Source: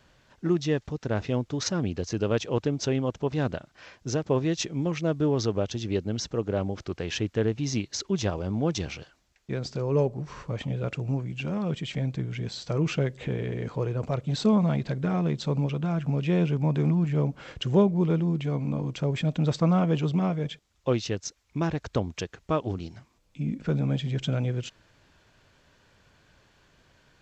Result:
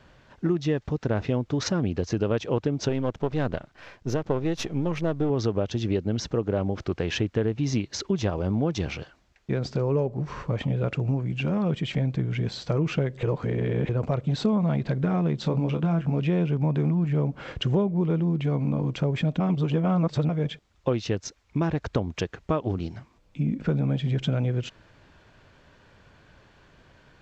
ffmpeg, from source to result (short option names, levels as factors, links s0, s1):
-filter_complex "[0:a]asettb=1/sr,asplit=3[s0][s1][s2];[s0]atrim=end=2.894[s3];[s1]atrim=start=2.89:end=5.3,asetpts=PTS-STARTPTS,afade=t=in:d=0.004:c=qsin,afade=t=out:st=2.406:d=0.004:c=qsin,aeval=exprs='if(lt(val(0),0),0.447*val(0),val(0))':c=same[s4];[s2]atrim=start=5.296[s5];[s3][s4]acrossfade=d=0.004:c1=hsin:c2=qsin[s6];[s6][s5]acrossfade=d=0.004:c1=qsin:c2=hsin,asettb=1/sr,asplit=3[s7][s8][s9];[s7]atrim=end=15.384[s10];[s8]atrim=start=15.38:end=16.2,asetpts=PTS-STARTPTS,afade=t=in:d=0.004:c=qsin,afade=t=out:st=0.816:d=0.004:c=qsin,asplit=2[s11][s12];[s12]adelay=24,volume=0.422[s13];[s11][s13]amix=inputs=2:normalize=0,atrim=end_sample=36162[s14];[s9]atrim=start=16.196[s15];[s10][s14]acrossfade=d=0.004:c1=hsin:c2=qsin[s16];[s16][s15]acrossfade=d=0.004:c1=qsin:c2=hsin,asplit=5[s17][s18][s19][s20][s21];[s17]atrim=end=13.232[s22];[s18]atrim=start=13.228:end=13.892,asetpts=PTS-STARTPTS,areverse[s23];[s19]atrim=start=13.888:end=19.402[s24];[s20]atrim=start=19.398:end=20.292,asetpts=PTS-STARTPTS,areverse[s25];[s21]atrim=start=20.288[s26];[s22][s23]acrossfade=d=0.004:c1=hsin:c2=hsin[s27];[s27][s24]acrossfade=d=0.004:c1=hsin:c2=hsin[s28];[s28][s25]acrossfade=d=0.004:c1=hsin:c2=hsin[s29];[s29][s26]acrossfade=d=0.004:c1=hsin:c2=hsin,lowpass=f=2500:p=1,acompressor=threshold=0.0398:ratio=4,volume=2.11"